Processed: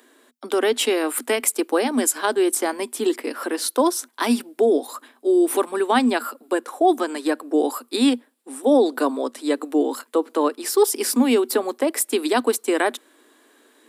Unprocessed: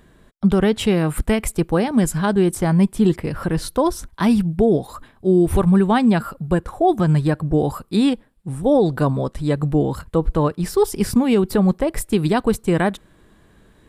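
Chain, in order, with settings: Chebyshev high-pass 240 Hz, order 8; treble shelf 3.7 kHz +9.5 dB

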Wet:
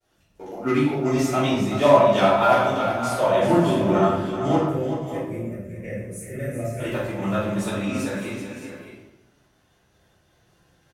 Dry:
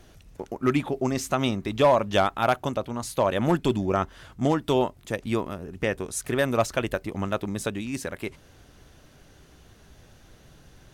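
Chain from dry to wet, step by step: coarse spectral quantiser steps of 15 dB; high-pass 86 Hz 6 dB/octave; expander -46 dBFS; bass shelf 150 Hz -10 dB; harmonic-percussive split harmonic +5 dB; 4.55–6.80 s: FFT filter 160 Hz 0 dB, 290 Hz -11 dB, 610 Hz -8 dB, 930 Hz -30 dB, 2.1 kHz -7 dB, 3.4 kHz -28 dB, 7 kHz -10 dB, 12 kHz -4 dB; multi-tap echo 382/564/615 ms -9/-14/-12 dB; simulated room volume 240 m³, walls mixed, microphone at 4.5 m; trim -10.5 dB

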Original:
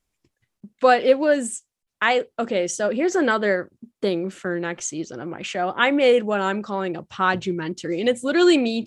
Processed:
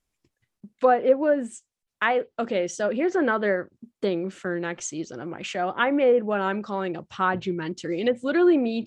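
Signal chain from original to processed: low-pass that closes with the level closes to 1.2 kHz, closed at -13.5 dBFS; trim -2.5 dB

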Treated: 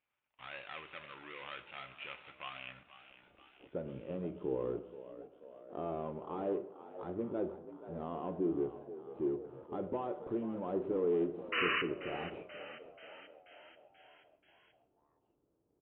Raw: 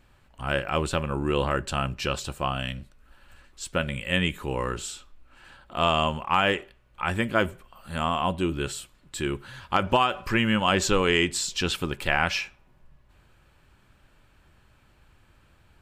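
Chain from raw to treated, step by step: median filter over 25 samples; waveshaping leveller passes 2; in parallel at 0 dB: compression, threshold -33 dBFS, peak gain reduction 16.5 dB; on the sum: peak limiter -14.5 dBFS, peak gain reduction 5.5 dB; band-pass sweep 2.4 kHz -> 390 Hz, 2.63–3.21 s; painted sound noise, 11.52–11.82 s, 1–3 kHz -25 dBFS; frequency-shifting echo 484 ms, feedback 59%, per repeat +54 Hz, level -14 dB; on a send at -9.5 dB: reverberation RT60 0.75 s, pre-delay 7 ms; on the sum: resampled via 8 kHz; trim -8.5 dB

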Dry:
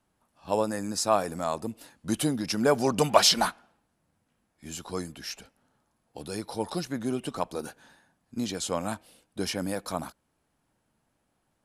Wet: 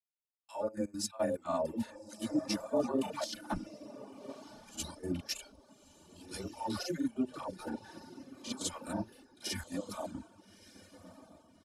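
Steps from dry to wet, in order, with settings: phase dispersion lows, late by 132 ms, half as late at 620 Hz; granulator, spray 35 ms, pitch spread up and down by 0 st; reverse; compression 5:1, threshold -38 dBFS, peak gain reduction 20 dB; reverse; trance gate "x.xxxxxx.x.xx.x" 176 bpm -12 dB; harmonic-percussive split harmonic +7 dB; comb 3.4 ms, depth 51%; on a send: echo that smears into a reverb 1257 ms, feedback 45%, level -7 dB; on the sum: gate with hold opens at -43 dBFS; reverb removal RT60 0.8 s; three bands expanded up and down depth 70%

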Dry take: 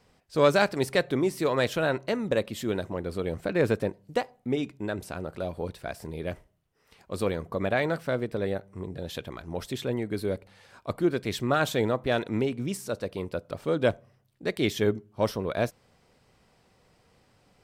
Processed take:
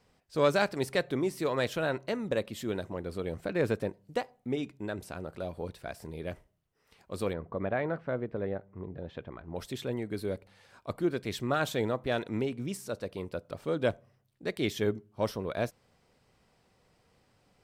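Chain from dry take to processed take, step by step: 7.33–9.56 s: low-pass 1.8 kHz 12 dB/octave; trim -4.5 dB

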